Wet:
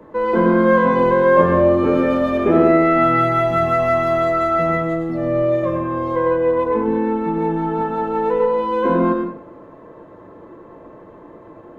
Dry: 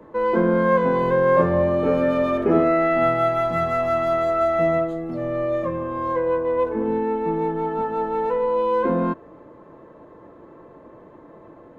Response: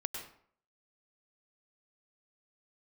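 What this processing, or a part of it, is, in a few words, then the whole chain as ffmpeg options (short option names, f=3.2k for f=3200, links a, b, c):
bathroom: -filter_complex "[1:a]atrim=start_sample=2205[a];[0:a][a]afir=irnorm=-1:irlink=0,volume=3.5dB"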